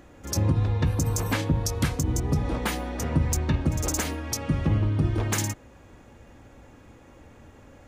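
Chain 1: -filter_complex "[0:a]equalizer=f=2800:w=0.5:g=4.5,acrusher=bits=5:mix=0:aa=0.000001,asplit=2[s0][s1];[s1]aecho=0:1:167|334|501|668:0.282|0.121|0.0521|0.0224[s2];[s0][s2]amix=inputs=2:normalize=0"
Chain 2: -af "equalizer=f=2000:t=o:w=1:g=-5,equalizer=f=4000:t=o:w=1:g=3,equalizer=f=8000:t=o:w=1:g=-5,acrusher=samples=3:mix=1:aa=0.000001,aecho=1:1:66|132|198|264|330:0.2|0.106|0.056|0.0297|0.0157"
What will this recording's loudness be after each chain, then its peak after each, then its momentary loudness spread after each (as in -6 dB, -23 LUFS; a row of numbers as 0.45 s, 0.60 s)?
-25.0 LUFS, -26.5 LUFS; -10.0 dBFS, -12.5 dBFS; 4 LU, 7 LU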